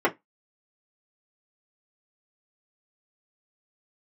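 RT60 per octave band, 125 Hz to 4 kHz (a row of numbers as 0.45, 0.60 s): 0.15, 0.20, 0.15, 0.15, 0.15, 0.15 s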